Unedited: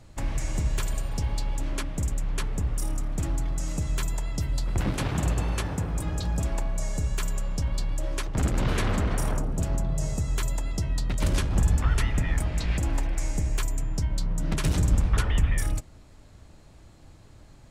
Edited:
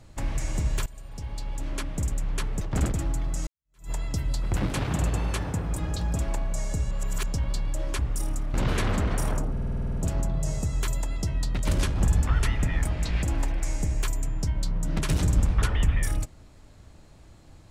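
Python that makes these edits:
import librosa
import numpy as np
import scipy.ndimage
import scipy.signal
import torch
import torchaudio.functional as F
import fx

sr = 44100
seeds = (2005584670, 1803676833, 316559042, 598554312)

y = fx.edit(x, sr, fx.fade_in_from(start_s=0.86, length_s=1.07, floor_db=-20.0),
    fx.swap(start_s=2.61, length_s=0.55, other_s=8.23, other_length_s=0.31),
    fx.fade_in_span(start_s=3.71, length_s=0.44, curve='exp'),
    fx.reverse_span(start_s=7.15, length_s=0.35),
    fx.stutter(start_s=9.51, slice_s=0.05, count=10), tone=tone)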